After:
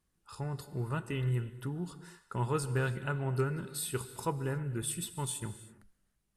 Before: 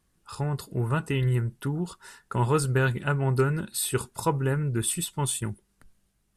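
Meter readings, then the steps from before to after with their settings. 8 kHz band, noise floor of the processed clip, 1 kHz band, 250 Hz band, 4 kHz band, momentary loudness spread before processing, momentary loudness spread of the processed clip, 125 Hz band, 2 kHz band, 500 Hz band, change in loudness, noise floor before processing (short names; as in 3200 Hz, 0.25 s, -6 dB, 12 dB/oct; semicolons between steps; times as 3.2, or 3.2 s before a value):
-8.0 dB, -78 dBFS, -8.0 dB, -8.0 dB, -8.0 dB, 9 LU, 9 LU, -8.0 dB, -8.5 dB, -8.0 dB, -8.0 dB, -71 dBFS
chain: non-linear reverb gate 0.35 s flat, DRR 12 dB; gain -8.5 dB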